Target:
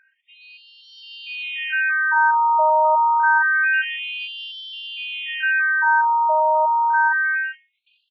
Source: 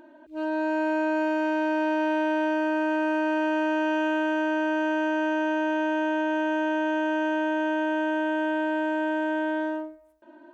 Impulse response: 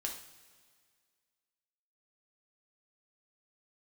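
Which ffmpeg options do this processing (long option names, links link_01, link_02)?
-af "atempo=1.3,dynaudnorm=framelen=720:gausssize=3:maxgain=13dB,afftfilt=real='re*between(b*sr/1024,880*pow(4000/880,0.5+0.5*sin(2*PI*0.27*pts/sr))/1.41,880*pow(4000/880,0.5+0.5*sin(2*PI*0.27*pts/sr))*1.41)':imag='im*between(b*sr/1024,880*pow(4000/880,0.5+0.5*sin(2*PI*0.27*pts/sr))/1.41,880*pow(4000/880,0.5+0.5*sin(2*PI*0.27*pts/sr))*1.41)':win_size=1024:overlap=0.75,volume=3.5dB"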